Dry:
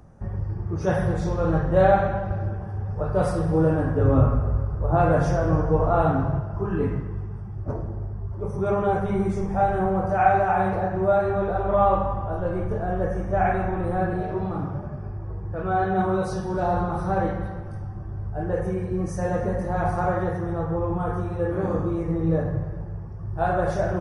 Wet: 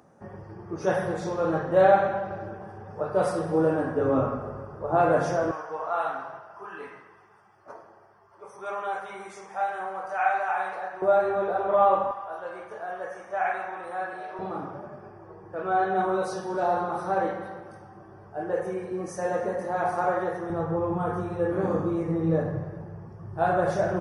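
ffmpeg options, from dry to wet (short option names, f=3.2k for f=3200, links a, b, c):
-af "asetnsamples=n=441:p=0,asendcmd='5.51 highpass f 1000;11.02 highpass f 370;12.11 highpass f 850;14.39 highpass f 340;20.5 highpass f 160',highpass=270"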